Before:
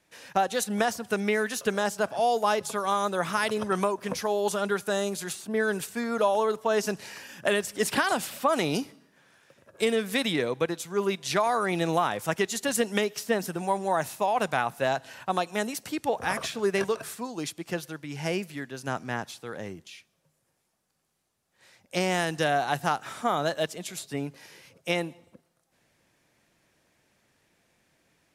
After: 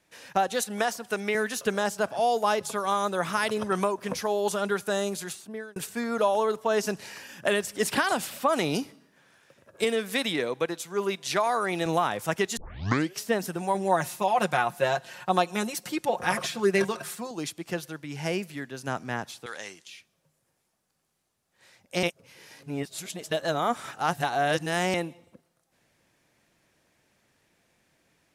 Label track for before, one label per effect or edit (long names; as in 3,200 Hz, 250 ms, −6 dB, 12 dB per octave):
0.610000	1.350000	high-pass filter 340 Hz 6 dB per octave
5.160000	5.760000	fade out linear
9.840000	11.860000	high-pass filter 230 Hz 6 dB per octave
12.570000	12.570000	tape start 0.61 s
13.740000	17.310000	comb filter 5.6 ms, depth 70%
19.460000	19.870000	meter weighting curve ITU-R 468
22.030000	24.940000	reverse